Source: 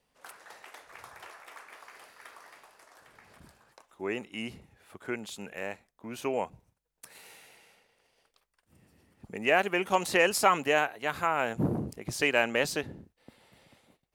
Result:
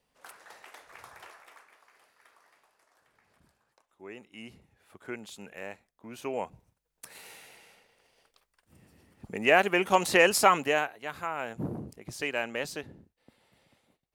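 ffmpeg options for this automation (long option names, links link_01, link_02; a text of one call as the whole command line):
ffmpeg -i in.wav -af "volume=13.5dB,afade=type=out:start_time=1.19:duration=0.57:silence=0.298538,afade=type=in:start_time=4.13:duration=0.92:silence=0.421697,afade=type=in:start_time=6.23:duration=0.86:silence=0.446684,afade=type=out:start_time=10.39:duration=0.61:silence=0.354813" out.wav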